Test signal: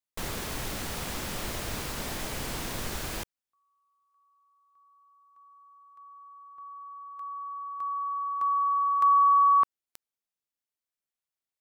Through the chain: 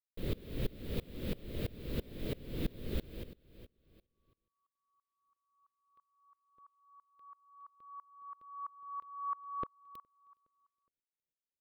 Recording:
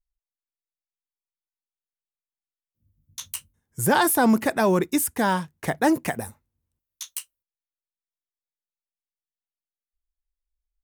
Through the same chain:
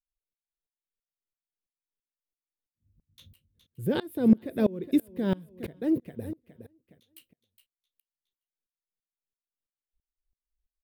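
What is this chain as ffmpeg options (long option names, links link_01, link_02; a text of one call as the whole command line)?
ffmpeg -i in.wav -filter_complex "[0:a]firequalizer=gain_entry='entry(500,0);entry(800,-22);entry(2300,-12);entry(3700,-9);entry(6000,-27);entry(16000,-10)':delay=0.05:min_phase=1,asplit=2[link_01][link_02];[link_02]acompressor=threshold=-27dB:ratio=6:release=174:detection=peak,volume=1dB[link_03];[link_01][link_03]amix=inputs=2:normalize=0,aecho=1:1:415|830|1245:0.141|0.0424|0.0127,aeval=exprs='val(0)*pow(10,-26*if(lt(mod(-3*n/s,1),2*abs(-3)/1000),1-mod(-3*n/s,1)/(2*abs(-3)/1000),(mod(-3*n/s,1)-2*abs(-3)/1000)/(1-2*abs(-3)/1000))/20)':channel_layout=same" out.wav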